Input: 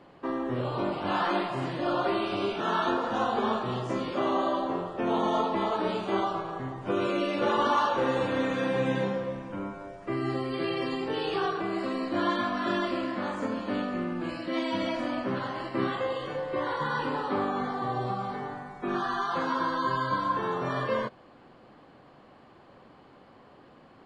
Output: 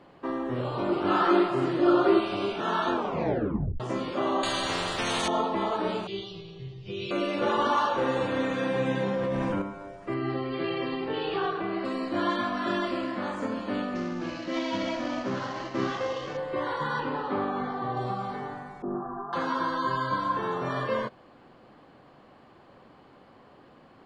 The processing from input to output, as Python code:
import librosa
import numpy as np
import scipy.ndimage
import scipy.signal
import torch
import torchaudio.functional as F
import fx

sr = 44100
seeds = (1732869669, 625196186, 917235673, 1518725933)

y = fx.small_body(x, sr, hz=(360.0, 1300.0), ring_ms=35, db=12, at=(0.89, 2.2))
y = fx.spectral_comp(y, sr, ratio=4.0, at=(4.43, 5.28))
y = fx.curve_eq(y, sr, hz=(180.0, 270.0, 390.0, 570.0, 840.0, 1500.0, 2600.0, 5100.0, 8700.0), db=(0, -24, -4, -20, -26, -27, 3, 5, -22), at=(6.07, 7.11))
y = fx.env_flatten(y, sr, amount_pct=100, at=(9.05, 9.62))
y = fx.lowpass(y, sr, hz=4100.0, slope=24, at=(10.14, 11.85))
y = fx.cvsd(y, sr, bps=32000, at=(13.95, 16.37))
y = fx.air_absorb(y, sr, metres=130.0, at=(17.0, 17.97))
y = fx.bessel_lowpass(y, sr, hz=700.0, order=8, at=(18.82, 19.33))
y = fx.edit(y, sr, fx.tape_stop(start_s=2.93, length_s=0.87), tone=tone)